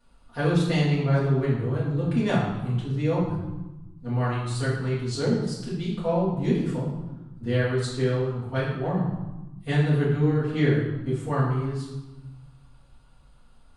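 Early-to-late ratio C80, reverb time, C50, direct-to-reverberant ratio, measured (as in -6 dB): 4.5 dB, 1.1 s, 1.5 dB, -10.0 dB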